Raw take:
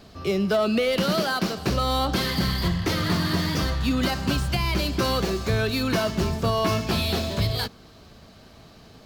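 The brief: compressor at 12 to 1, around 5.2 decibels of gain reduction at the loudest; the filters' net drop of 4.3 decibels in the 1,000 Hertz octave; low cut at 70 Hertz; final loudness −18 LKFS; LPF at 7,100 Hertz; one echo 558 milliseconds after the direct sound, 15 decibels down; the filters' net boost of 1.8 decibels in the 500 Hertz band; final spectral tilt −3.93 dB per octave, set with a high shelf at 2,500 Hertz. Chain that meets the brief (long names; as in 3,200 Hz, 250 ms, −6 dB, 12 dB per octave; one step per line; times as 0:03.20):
high-pass filter 70 Hz
low-pass filter 7,100 Hz
parametric band 500 Hz +4.5 dB
parametric band 1,000 Hz −8.5 dB
high-shelf EQ 2,500 Hz +5 dB
downward compressor 12 to 1, threshold −23 dBFS
single-tap delay 558 ms −15 dB
level +9 dB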